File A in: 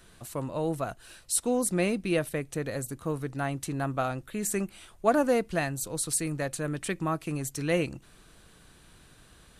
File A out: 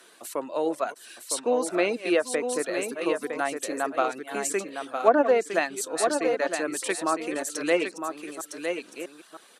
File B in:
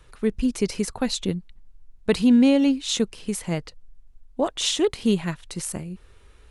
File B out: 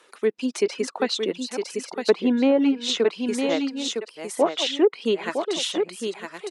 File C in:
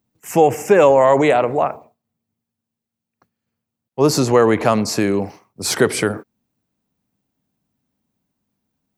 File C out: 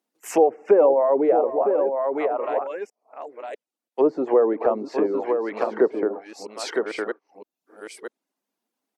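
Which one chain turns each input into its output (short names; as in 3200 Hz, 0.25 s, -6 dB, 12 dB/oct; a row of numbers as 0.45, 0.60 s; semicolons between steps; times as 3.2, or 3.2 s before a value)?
reverse delay 0.647 s, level -10.5 dB; HPF 310 Hz 24 dB/oct; reverb removal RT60 0.62 s; on a send: echo 0.959 s -6.5 dB; on the sum: treble ducked by the level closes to 630 Hz, closed at -15.5 dBFS; normalise peaks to -6 dBFS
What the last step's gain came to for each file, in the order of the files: +5.0, +4.0, -1.5 dB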